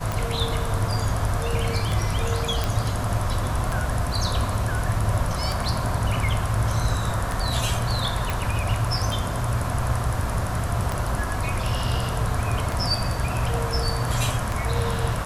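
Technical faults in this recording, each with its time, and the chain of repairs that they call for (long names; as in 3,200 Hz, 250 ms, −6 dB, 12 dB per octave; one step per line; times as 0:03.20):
scratch tick 33 1/3 rpm
0:02.64: click
0:08.30: click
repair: click removal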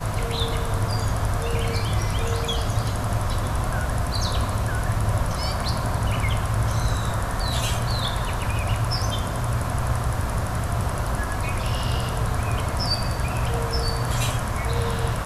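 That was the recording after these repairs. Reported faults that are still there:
none of them is left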